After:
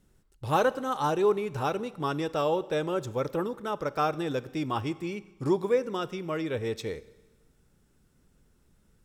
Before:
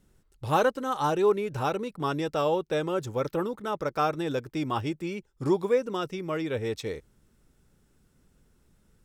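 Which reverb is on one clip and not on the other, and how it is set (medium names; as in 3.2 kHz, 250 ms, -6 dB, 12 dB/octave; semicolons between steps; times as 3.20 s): Schroeder reverb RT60 1.2 s, combs from 31 ms, DRR 17.5 dB; trim -1 dB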